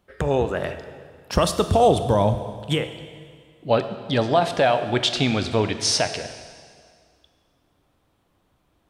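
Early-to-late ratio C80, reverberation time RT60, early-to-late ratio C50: 11.5 dB, 2.0 s, 10.5 dB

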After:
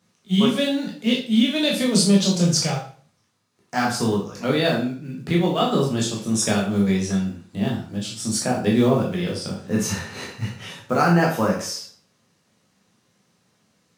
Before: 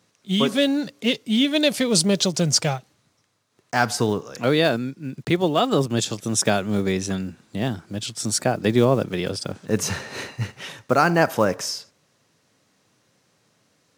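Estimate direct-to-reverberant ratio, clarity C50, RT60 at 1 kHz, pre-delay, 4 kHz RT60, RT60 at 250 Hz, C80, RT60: -3.0 dB, 6.0 dB, 0.40 s, 11 ms, 0.40 s, 0.50 s, 11.0 dB, 0.45 s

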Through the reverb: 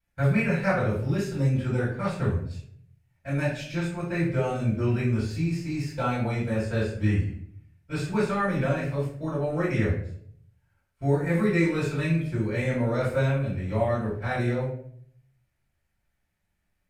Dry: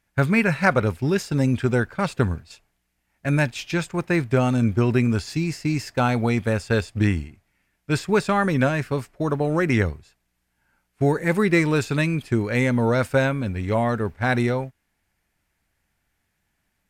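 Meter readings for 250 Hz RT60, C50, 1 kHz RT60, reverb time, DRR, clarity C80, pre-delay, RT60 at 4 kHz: 0.75 s, 3.5 dB, 0.50 s, 0.60 s, -12.0 dB, 8.0 dB, 3 ms, 0.40 s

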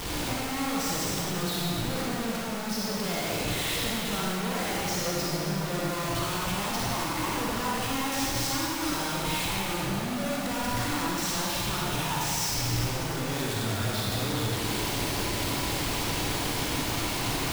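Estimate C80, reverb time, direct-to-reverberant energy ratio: -2.0 dB, 2.6 s, -6.0 dB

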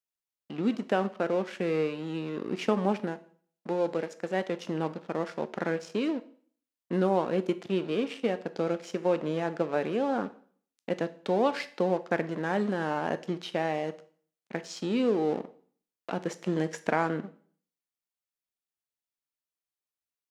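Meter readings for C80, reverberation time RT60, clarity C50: 20.5 dB, 0.50 s, 16.5 dB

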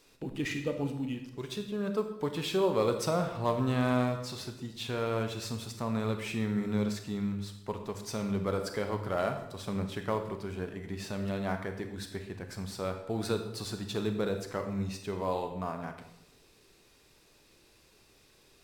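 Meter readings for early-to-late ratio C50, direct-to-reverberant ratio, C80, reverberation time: 8.0 dB, 6.0 dB, 10.5 dB, 0.85 s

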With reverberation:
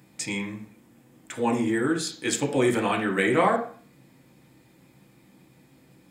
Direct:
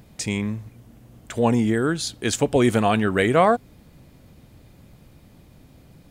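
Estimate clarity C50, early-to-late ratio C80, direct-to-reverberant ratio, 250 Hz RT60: 9.5 dB, 13.0 dB, -0.5 dB, 0.45 s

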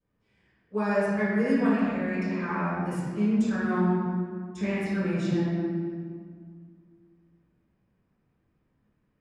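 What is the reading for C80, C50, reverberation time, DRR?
-1.0 dB, -3.5 dB, 2.0 s, -18.0 dB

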